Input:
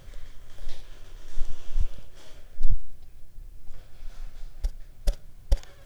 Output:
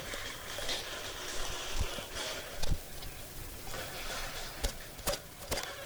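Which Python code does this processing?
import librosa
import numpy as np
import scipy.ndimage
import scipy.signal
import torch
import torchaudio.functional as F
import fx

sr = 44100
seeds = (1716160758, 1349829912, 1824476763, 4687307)

p1 = fx.spec_quant(x, sr, step_db=15)
p2 = fx.highpass(p1, sr, hz=530.0, slope=6)
p3 = fx.fold_sine(p2, sr, drive_db=15, ceiling_db=-22.5)
p4 = fx.rider(p3, sr, range_db=4, speed_s=2.0)
p5 = p4 + fx.echo_single(p4, sr, ms=345, db=-15.0, dry=0)
y = F.gain(torch.from_numpy(p5), -2.5).numpy()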